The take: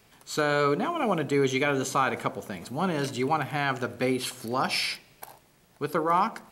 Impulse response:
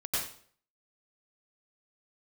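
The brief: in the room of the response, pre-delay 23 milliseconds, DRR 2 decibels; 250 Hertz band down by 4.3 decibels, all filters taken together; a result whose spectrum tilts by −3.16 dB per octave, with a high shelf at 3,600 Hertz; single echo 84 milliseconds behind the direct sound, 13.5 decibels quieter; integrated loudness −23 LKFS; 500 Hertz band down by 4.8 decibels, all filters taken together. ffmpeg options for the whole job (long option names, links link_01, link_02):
-filter_complex "[0:a]equalizer=frequency=250:width_type=o:gain=-4,equalizer=frequency=500:width_type=o:gain=-5,highshelf=frequency=3600:gain=6.5,aecho=1:1:84:0.211,asplit=2[link_01][link_02];[1:a]atrim=start_sample=2205,adelay=23[link_03];[link_02][link_03]afir=irnorm=-1:irlink=0,volume=-8dB[link_04];[link_01][link_04]amix=inputs=2:normalize=0,volume=2.5dB"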